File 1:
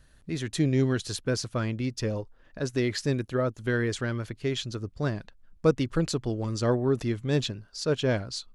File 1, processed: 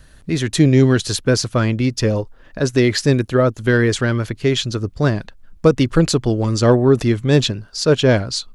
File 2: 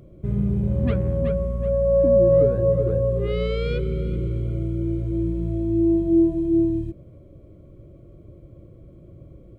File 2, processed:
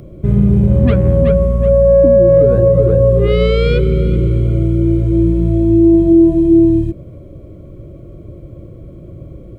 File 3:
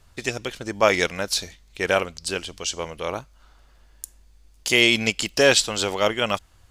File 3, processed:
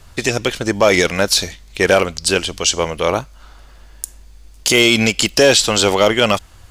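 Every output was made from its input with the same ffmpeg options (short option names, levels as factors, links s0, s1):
-filter_complex "[0:a]acrossover=split=740|3200[s0][s1][s2];[s1]asoftclip=type=tanh:threshold=0.075[s3];[s0][s3][s2]amix=inputs=3:normalize=0,alimiter=level_in=4.47:limit=0.891:release=50:level=0:latency=1,volume=0.891"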